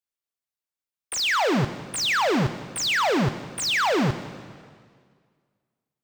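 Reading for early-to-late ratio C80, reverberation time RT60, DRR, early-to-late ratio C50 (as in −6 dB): 12.5 dB, 1.9 s, 10.5 dB, 11.5 dB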